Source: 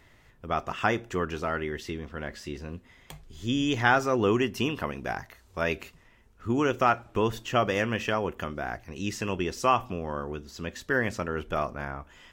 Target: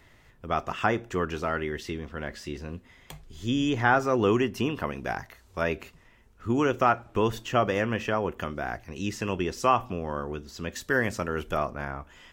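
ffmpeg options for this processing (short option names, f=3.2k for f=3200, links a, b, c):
-filter_complex "[0:a]asettb=1/sr,asplit=3[a][b][c];[a]atrim=end=10.724[d];[b]atrim=start=10.72:end=11.57,asetpts=PTS-STARTPTS,afade=t=in:d=0.004:c=qsin,afade=t=out:st=0.846:d=0.004:c=qsin,highshelf=f=5k:g=10[e];[c]atrim=start=11.566[f];[d][e]acrossfade=d=0.004:c1=hsin:c2=qsin[g];[g][f]acrossfade=d=0.004:c1=qsin:c2=hsin,acrossover=split=680|1900[h][i][j];[j]alimiter=level_in=4dB:limit=-24dB:level=0:latency=1:release=364,volume=-4dB[k];[h][i][k]amix=inputs=3:normalize=0,volume=1dB"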